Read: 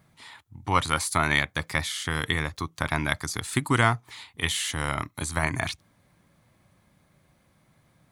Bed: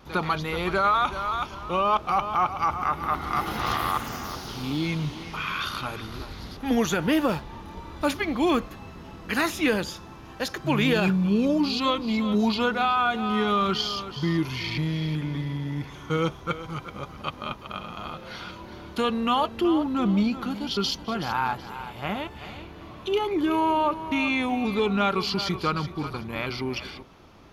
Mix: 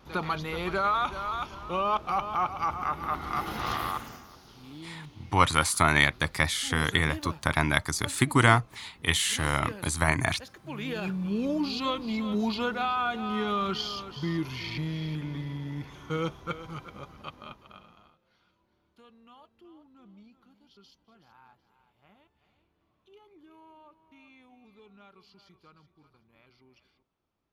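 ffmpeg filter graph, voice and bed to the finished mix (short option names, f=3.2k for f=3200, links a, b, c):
-filter_complex "[0:a]adelay=4650,volume=1.5dB[a];[1:a]volume=7dB,afade=t=out:st=3.82:d=0.44:silence=0.237137,afade=t=in:st=10.63:d=0.96:silence=0.266073,afade=t=out:st=16.68:d=1.48:silence=0.0501187[b];[a][b]amix=inputs=2:normalize=0"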